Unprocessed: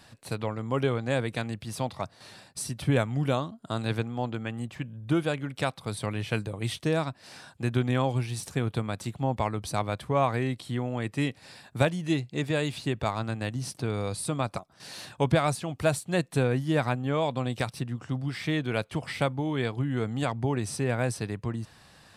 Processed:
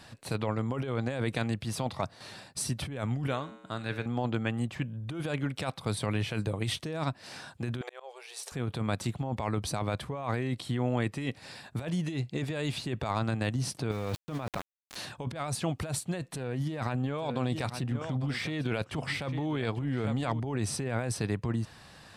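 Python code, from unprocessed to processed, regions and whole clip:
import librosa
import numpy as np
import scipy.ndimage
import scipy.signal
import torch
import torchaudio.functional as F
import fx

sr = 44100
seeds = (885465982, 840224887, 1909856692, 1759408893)

y = fx.chain(x, sr, fx.peak_eq(hz=1800.0, db=7.0, octaves=1.2),
    fx.comb_fb(f0_hz=63.0, decay_s=1.1, harmonics='odd', damping=0.0, mix_pct=70), at=(3.27, 4.06))
y = fx.chain(y, sr, fx.brickwall_highpass(low_hz=380.0),
    fx.auto_swell(attack_ms=645.0), at=(7.81, 8.52))
y = fx.chain(y, sr, fx.lowpass(hz=3700.0, slope=24),
    fx.sample_gate(floor_db=-37.5),
    fx.over_compress(threshold_db=-37.0, ratio=-1.0), at=(13.91, 14.96))
y = fx.chain(y, sr, fx.echo_single(ms=849, db=-16.0),
    fx.doppler_dist(depth_ms=0.12), at=(16.32, 20.4))
y = fx.high_shelf(y, sr, hz=9000.0, db=-5.0)
y = fx.over_compress(y, sr, threshold_db=-31.0, ratio=-1.0)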